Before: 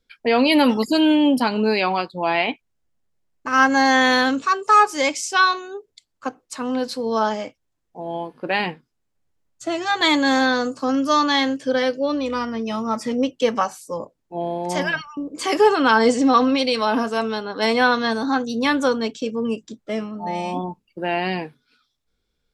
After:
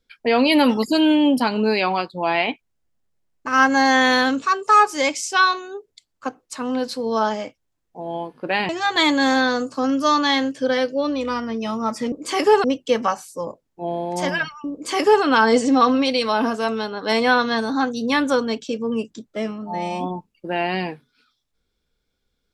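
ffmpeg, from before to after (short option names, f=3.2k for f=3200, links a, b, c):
-filter_complex "[0:a]asplit=4[a][b][c][d];[a]atrim=end=8.692[e];[b]atrim=start=9.738:end=13.172[f];[c]atrim=start=15.248:end=15.772[g];[d]atrim=start=13.168[h];[e][f]acrossfade=d=0.004:c1=hsin:c2=hsin[i];[i][g]acrossfade=d=0.004:c1=hsin:c2=hsin[j];[j][h]acrossfade=d=0.004:c1=hsin:c2=hsin"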